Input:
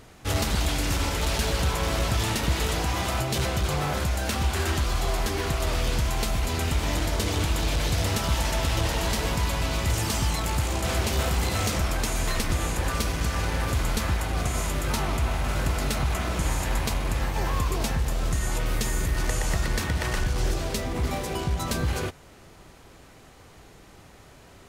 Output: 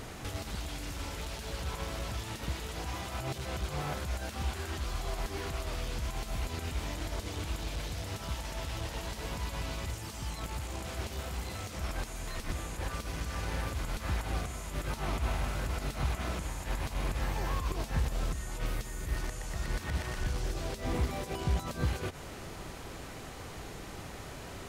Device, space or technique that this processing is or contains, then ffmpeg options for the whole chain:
de-esser from a sidechain: -filter_complex "[0:a]asplit=2[a][b];[b]highpass=5.5k,apad=whole_len=1088583[c];[a][c]sidechaincompress=threshold=-55dB:ratio=8:attack=3:release=81,volume=6.5dB"

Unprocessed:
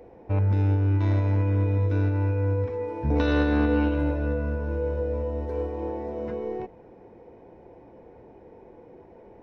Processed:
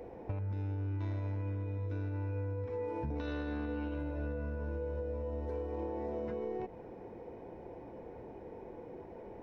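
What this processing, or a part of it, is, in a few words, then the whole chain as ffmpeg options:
serial compression, peaks first: -af "acompressor=threshold=-33dB:ratio=6,acompressor=threshold=-36dB:ratio=2.5,volume=1dB"

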